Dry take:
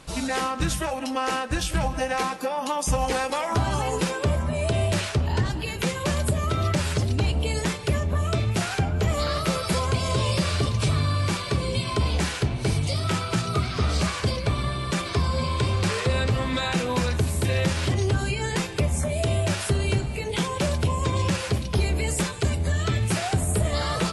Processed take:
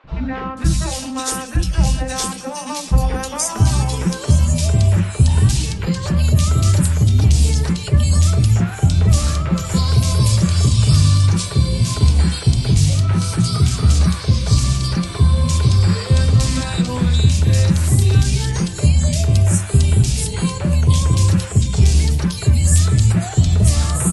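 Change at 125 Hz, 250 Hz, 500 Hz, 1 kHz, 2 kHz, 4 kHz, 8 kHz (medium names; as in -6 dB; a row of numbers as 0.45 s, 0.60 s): +11.5 dB, +7.5 dB, -1.5 dB, -0.5 dB, -1.0 dB, +4.5 dB, +9.5 dB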